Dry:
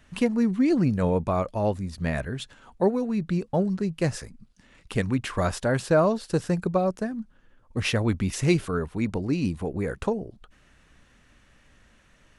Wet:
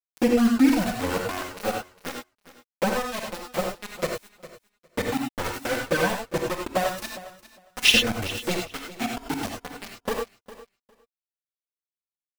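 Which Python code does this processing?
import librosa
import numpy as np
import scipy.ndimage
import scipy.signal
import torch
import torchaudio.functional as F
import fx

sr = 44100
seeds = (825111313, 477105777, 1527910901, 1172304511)

p1 = x + 0.5 * 10.0 ** (-27.0 / 20.0) * np.diff(np.sign(x), prepend=np.sign(x[:1]))
p2 = fx.weighting(p1, sr, curve='D', at=(6.93, 7.91), fade=0.02)
p3 = fx.dereverb_blind(p2, sr, rt60_s=0.95)
p4 = p3 + 0.81 * np.pad(p3, (int(4.0 * sr / 1000.0), 0))[:len(p3)]
p5 = np.where(np.abs(p4) >= 10.0 ** (-19.0 / 20.0), p4, 0.0)
p6 = fx.env_flanger(p5, sr, rest_ms=6.4, full_db=-12.0)
p7 = p6 + fx.echo_feedback(p6, sr, ms=406, feedback_pct=16, wet_db=-16.5, dry=0)
y = fx.rev_gated(p7, sr, seeds[0], gate_ms=120, shape='rising', drr_db=1.5)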